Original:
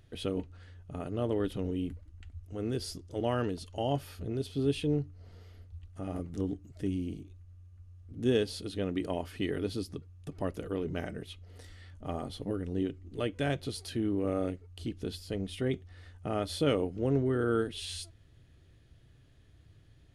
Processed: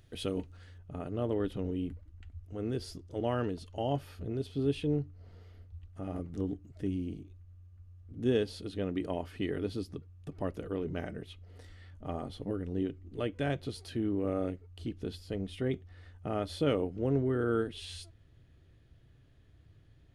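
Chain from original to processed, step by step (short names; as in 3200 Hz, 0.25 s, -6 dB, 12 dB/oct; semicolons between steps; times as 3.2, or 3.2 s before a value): high shelf 4100 Hz +4 dB, from 0.78 s -8 dB; gain -1 dB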